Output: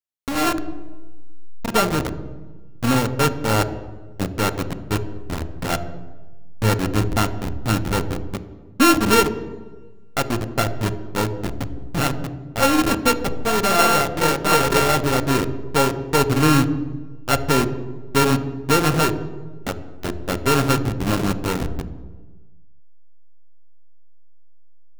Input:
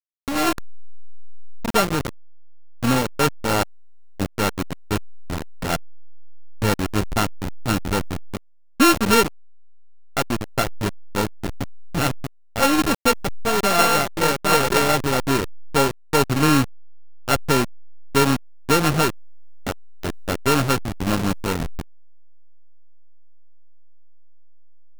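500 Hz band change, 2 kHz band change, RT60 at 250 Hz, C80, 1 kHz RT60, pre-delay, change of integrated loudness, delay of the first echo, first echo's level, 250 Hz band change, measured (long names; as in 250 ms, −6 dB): +1.0 dB, 0.0 dB, 1.5 s, 14.5 dB, 1.2 s, 3 ms, +0.5 dB, no echo audible, no echo audible, +1.5 dB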